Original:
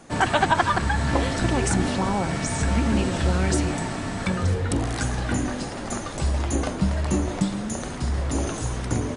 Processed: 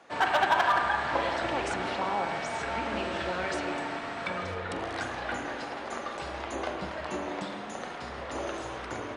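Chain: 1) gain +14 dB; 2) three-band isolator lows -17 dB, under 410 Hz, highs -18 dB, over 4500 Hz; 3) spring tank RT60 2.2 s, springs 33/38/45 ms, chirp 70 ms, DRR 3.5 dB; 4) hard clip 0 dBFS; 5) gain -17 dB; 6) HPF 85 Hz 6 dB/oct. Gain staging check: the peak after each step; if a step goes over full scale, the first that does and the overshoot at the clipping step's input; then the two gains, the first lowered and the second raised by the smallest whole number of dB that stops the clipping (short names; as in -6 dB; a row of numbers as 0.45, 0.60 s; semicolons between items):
+9.0, +8.0, +7.5, 0.0, -17.0, -15.0 dBFS; step 1, 7.5 dB; step 1 +6 dB, step 5 -9 dB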